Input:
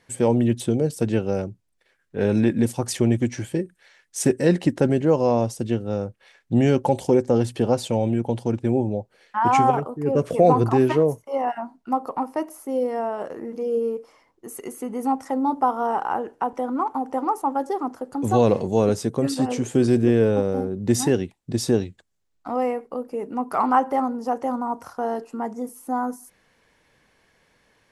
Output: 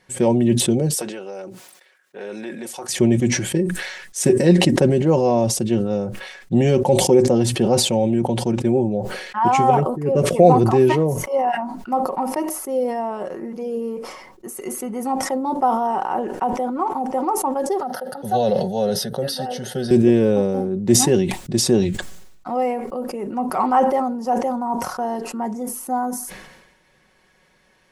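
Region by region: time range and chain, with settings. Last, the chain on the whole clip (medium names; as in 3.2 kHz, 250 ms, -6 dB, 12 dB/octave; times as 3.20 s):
0.94–2.89 s: high-pass 500 Hz + compression 2.5:1, threshold -34 dBFS
17.80–19.91 s: high-pass 150 Hz + treble shelf 5.8 kHz +5.5 dB + static phaser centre 1.6 kHz, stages 8
whole clip: comb 5.4 ms, depth 50%; dynamic bell 1.4 kHz, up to -6 dB, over -40 dBFS, Q 1.9; decay stretcher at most 51 dB/s; trim +2 dB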